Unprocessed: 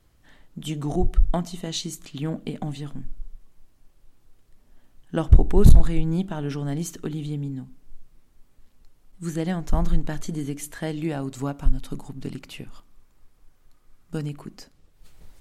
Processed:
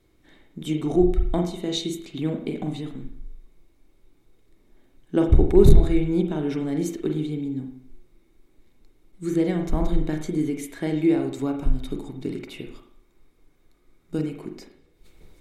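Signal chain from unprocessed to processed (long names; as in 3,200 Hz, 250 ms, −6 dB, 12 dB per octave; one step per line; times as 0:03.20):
hollow resonant body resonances 350/2,200/3,700 Hz, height 12 dB, ringing for 20 ms
on a send: convolution reverb RT60 0.55 s, pre-delay 39 ms, DRR 4 dB
on the sum: level −4 dB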